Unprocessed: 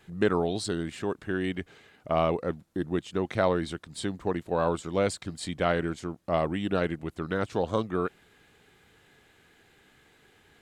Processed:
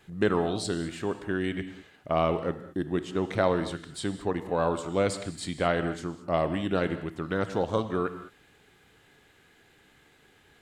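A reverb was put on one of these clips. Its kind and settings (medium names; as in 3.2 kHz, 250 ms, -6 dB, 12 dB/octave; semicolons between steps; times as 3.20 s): gated-style reverb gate 240 ms flat, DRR 10 dB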